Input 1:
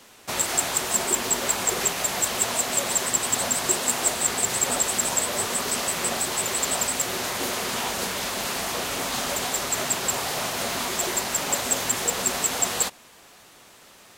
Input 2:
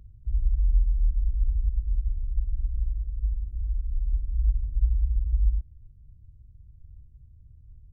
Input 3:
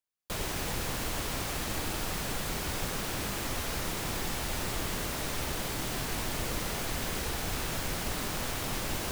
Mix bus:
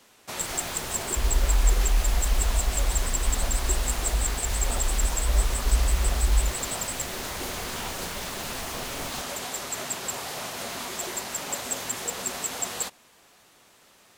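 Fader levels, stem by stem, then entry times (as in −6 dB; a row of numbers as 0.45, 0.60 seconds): −6.5, +0.5, −5.5 decibels; 0.00, 0.90, 0.10 seconds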